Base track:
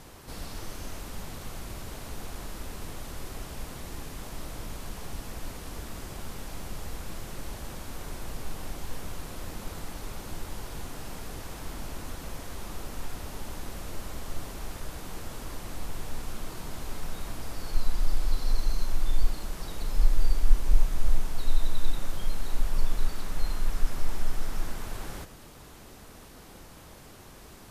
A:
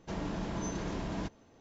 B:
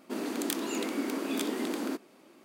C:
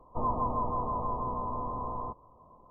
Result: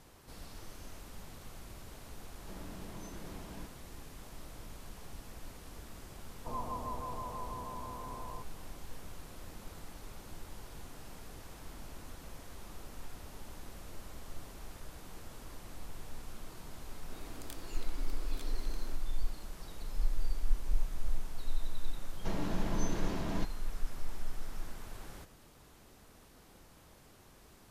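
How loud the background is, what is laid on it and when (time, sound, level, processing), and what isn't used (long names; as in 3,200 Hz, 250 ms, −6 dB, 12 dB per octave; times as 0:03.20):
base track −10 dB
0:02.39: mix in A −12.5 dB
0:06.30: mix in C −9.5 dB
0:17.00: mix in B −16 dB + parametric band 130 Hz −10 dB 2.3 octaves
0:22.17: mix in A −0.5 dB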